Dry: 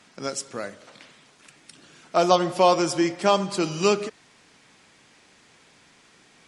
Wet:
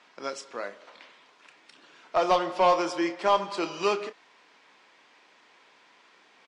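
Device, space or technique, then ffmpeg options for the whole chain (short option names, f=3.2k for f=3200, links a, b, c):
intercom: -filter_complex "[0:a]highpass=400,lowpass=4k,equalizer=f=990:t=o:w=0.22:g=6,asoftclip=type=tanh:threshold=-12.5dB,asplit=2[a][b];[b]adelay=30,volume=-11dB[c];[a][c]amix=inputs=2:normalize=0,volume=-1.5dB"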